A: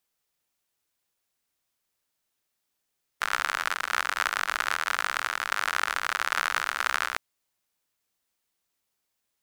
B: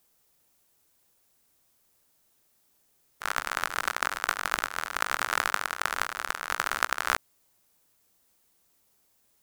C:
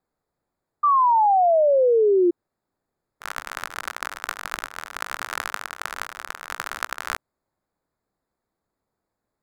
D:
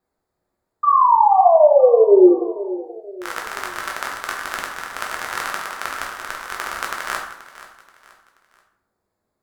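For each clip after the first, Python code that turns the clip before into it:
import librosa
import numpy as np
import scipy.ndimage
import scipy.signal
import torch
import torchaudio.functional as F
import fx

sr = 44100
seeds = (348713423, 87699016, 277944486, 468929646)

y1 = fx.peak_eq(x, sr, hz=2600.0, db=-7.0, octaves=2.8)
y1 = fx.over_compress(y1, sr, threshold_db=-39.0, ratio=-0.5)
y1 = F.gain(torch.from_numpy(y1), 8.5).numpy()
y2 = fx.wiener(y1, sr, points=15)
y2 = fx.spec_paint(y2, sr, seeds[0], shape='fall', start_s=0.83, length_s=1.48, low_hz=340.0, high_hz=1200.0, level_db=-15.0)
y2 = F.gain(torch.from_numpy(y2), -2.0).numpy()
y3 = fx.echo_feedback(y2, sr, ms=480, feedback_pct=38, wet_db=-16.0)
y3 = fx.rev_plate(y3, sr, seeds[1], rt60_s=0.72, hf_ratio=0.65, predelay_ms=0, drr_db=-0.5)
y3 = F.gain(torch.from_numpy(y3), 1.0).numpy()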